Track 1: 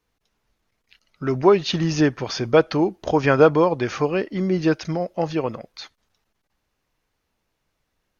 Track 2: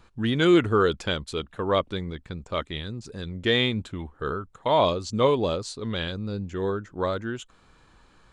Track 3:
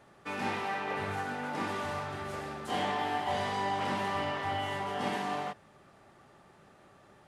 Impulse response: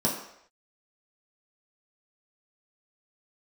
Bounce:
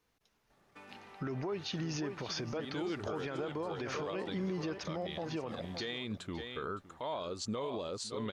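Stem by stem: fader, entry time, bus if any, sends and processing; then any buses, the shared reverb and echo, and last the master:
-1.5 dB, 0.00 s, bus A, no send, echo send -23 dB, dry
-3.5 dB, 2.35 s, bus A, no send, echo send -19 dB, low shelf 140 Hz -8 dB
-11.0 dB, 0.50 s, no bus, no send, no echo send, compressor 6:1, threshold -40 dBFS, peak gain reduction 11.5 dB
bus A: 0.0 dB, low shelf 60 Hz -9 dB; compressor, threshold -30 dBFS, peak gain reduction 18.5 dB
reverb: off
echo: echo 0.564 s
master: limiter -29 dBFS, peak gain reduction 11.5 dB

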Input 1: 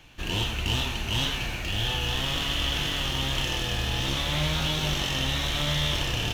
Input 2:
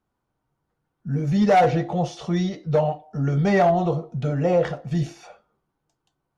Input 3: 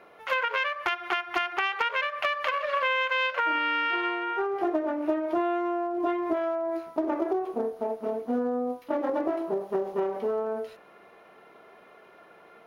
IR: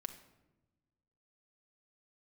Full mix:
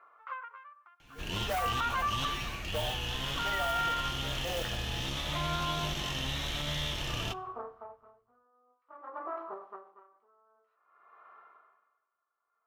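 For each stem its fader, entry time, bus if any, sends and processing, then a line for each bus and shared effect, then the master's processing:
-9.5 dB, 1.00 s, send -7 dB, dry
-9.5 dB, 0.00 s, no send, HPF 810 Hz 12 dB/oct; modulation noise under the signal 12 dB
+2.5 dB, 0.00 s, send -7 dB, AGC gain up to 4 dB; band-pass 1200 Hz, Q 6.8; dB-linear tremolo 0.53 Hz, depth 31 dB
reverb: on, RT60 1.1 s, pre-delay 5 ms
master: limiter -22.5 dBFS, peak gain reduction 7.5 dB

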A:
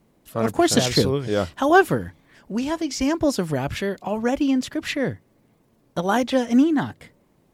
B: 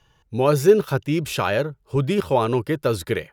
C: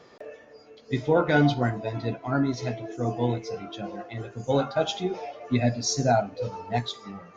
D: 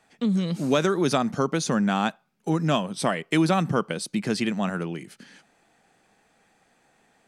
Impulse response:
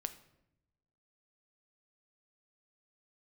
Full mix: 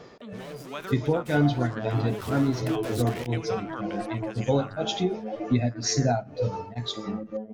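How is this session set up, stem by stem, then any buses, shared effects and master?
-11.0 dB, 1.00 s, send -7 dB, bell 620 Hz -6 dB 2 oct; LFO low-pass sine 0.45 Hz 380–1600 Hz; robotiser 108 Hz
1.73 s -21 dB -> 2.38 s -9.5 dB, 0.00 s, no send, fuzz box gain 39 dB, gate -41 dBFS; fast leveller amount 50%; auto duck -9 dB, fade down 0.55 s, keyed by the third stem
+2.5 dB, 0.00 s, send -13 dB, low shelf 350 Hz +6.5 dB; beating tremolo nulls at 2 Hz
-20.0 dB, 0.00 s, no send, band shelf 1500 Hz +10 dB 2.6 oct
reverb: on, RT60 0.85 s, pre-delay 7 ms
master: compressor 2:1, threshold -24 dBFS, peak gain reduction 9 dB

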